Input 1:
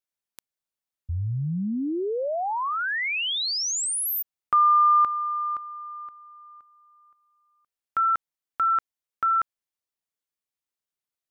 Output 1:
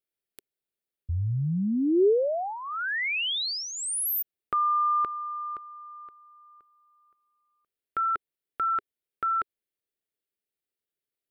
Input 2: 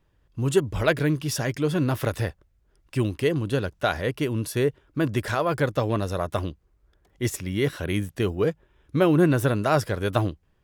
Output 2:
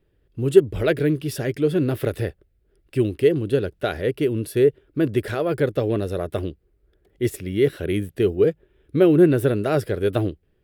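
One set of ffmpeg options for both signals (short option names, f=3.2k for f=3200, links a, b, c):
-af "equalizer=f=400:t=o:w=0.67:g=9,equalizer=f=1k:t=o:w=0.67:g=-11,equalizer=f=6.3k:t=o:w=0.67:g=-10"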